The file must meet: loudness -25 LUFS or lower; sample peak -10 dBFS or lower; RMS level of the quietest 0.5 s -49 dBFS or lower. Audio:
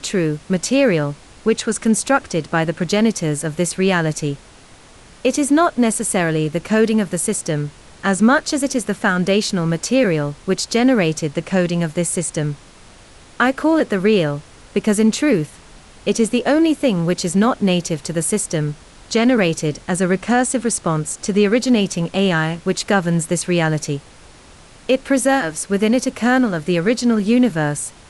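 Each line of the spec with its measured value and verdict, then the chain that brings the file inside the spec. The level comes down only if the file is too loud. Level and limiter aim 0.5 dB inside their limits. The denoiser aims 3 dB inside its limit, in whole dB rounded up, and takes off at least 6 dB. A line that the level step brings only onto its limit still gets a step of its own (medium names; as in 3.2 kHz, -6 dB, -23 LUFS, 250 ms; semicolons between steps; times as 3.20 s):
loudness -18.0 LUFS: fail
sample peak -4.0 dBFS: fail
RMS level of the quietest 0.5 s -44 dBFS: fail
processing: trim -7.5 dB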